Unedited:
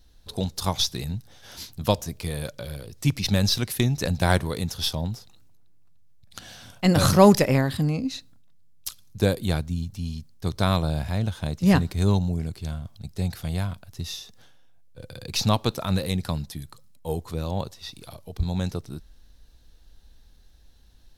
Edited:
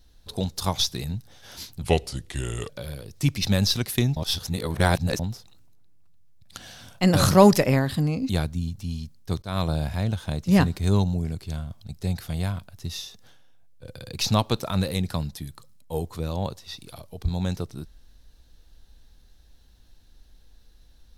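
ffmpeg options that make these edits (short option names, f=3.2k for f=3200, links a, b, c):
-filter_complex "[0:a]asplit=7[a][b][c][d][e][f][g];[a]atrim=end=1.824[h];[b]atrim=start=1.82:end=2.51,asetpts=PTS-STARTPTS,asetrate=34839,aresample=44100[i];[c]atrim=start=2.506:end=3.982[j];[d]atrim=start=3.978:end=5.012,asetpts=PTS-STARTPTS,areverse[k];[e]atrim=start=5.008:end=8.112[l];[f]atrim=start=9.438:end=10.57,asetpts=PTS-STARTPTS,afade=t=out:st=1.128:d=0.004:c=hsin:silence=0.0668344[m];[g]atrim=start=10.57,asetpts=PTS-STARTPTS,afade=t=in:d=0.26:silence=0.0668344[n];[h][i]acrossfade=d=0.004:c1=hsin:c2=hsin[o];[o][j]acrossfade=d=0.004:c1=hsin:c2=hsin[p];[p][k]acrossfade=d=0.004:c1=hsin:c2=hsin[q];[q][l]acrossfade=d=0.004:c1=hsin:c2=hsin[r];[m][n]concat=n=2:v=0:a=1[s];[r][s]acrossfade=d=0.004:c1=hsin:c2=hsin"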